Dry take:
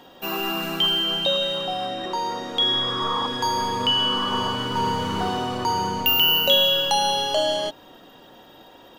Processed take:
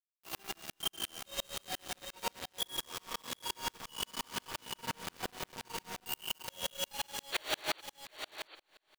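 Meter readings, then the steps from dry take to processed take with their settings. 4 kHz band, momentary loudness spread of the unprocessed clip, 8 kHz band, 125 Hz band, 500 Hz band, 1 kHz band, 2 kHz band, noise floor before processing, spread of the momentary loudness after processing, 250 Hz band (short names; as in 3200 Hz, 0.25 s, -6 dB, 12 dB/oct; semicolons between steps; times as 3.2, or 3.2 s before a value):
-19.5 dB, 11 LU, -6.0 dB, -21.0 dB, -21.0 dB, -20.0 dB, -14.5 dB, -49 dBFS, 7 LU, -21.5 dB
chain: low shelf 280 Hz -6 dB; reverse; compressor 8:1, threshold -35 dBFS, peak gain reduction 20.5 dB; reverse; chorus 1.1 Hz, delay 18 ms, depth 7.6 ms; requantised 6-bit, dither none; painted sound noise, 7.32–7.81, 300–4600 Hz -36 dBFS; on a send: echo 0.744 s -8 dB; on the sum: Schroeder reverb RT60 3.3 s, combs from 31 ms, DRR 18 dB; dB-ramp tremolo swelling 5.7 Hz, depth 38 dB; gain +6 dB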